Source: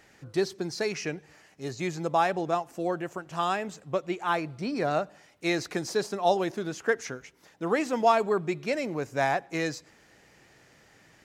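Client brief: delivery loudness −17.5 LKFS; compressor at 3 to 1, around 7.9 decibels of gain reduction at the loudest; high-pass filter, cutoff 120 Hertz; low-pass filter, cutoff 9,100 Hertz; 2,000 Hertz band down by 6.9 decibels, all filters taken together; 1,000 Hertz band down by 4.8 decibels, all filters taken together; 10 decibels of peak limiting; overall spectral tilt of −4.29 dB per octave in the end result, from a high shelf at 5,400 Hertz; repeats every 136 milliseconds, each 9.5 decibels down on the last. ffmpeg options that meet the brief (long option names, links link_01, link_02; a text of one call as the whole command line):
ffmpeg -i in.wav -af "highpass=120,lowpass=9100,equalizer=frequency=1000:width_type=o:gain=-5.5,equalizer=frequency=2000:width_type=o:gain=-8,highshelf=frequency=5400:gain=7,acompressor=threshold=-32dB:ratio=3,alimiter=level_in=7dB:limit=-24dB:level=0:latency=1,volume=-7dB,aecho=1:1:136|272|408|544:0.335|0.111|0.0365|0.012,volume=23dB" out.wav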